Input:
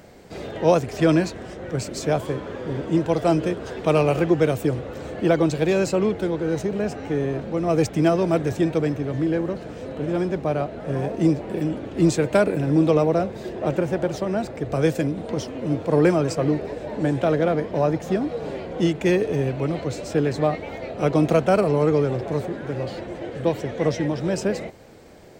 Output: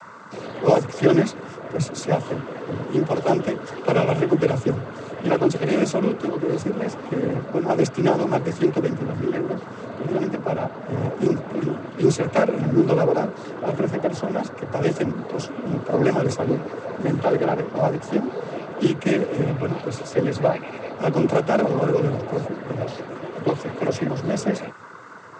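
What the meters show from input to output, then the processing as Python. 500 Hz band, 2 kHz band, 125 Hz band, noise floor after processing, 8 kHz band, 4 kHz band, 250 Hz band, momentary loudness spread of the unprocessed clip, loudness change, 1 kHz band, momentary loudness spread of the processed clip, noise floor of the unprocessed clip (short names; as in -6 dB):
0.0 dB, +0.5 dB, -0.5 dB, -37 dBFS, -0.5 dB, -0.5 dB, -0.5 dB, 10 LU, -0.5 dB, +1.0 dB, 10 LU, -36 dBFS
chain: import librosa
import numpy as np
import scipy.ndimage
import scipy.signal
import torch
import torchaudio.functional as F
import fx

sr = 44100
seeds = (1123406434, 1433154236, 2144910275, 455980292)

y = fx.dmg_noise_band(x, sr, seeds[0], low_hz=950.0, high_hz=1500.0, level_db=-43.0)
y = fx.doubler(y, sr, ms=15.0, db=-14.0)
y = fx.noise_vocoder(y, sr, seeds[1], bands=16)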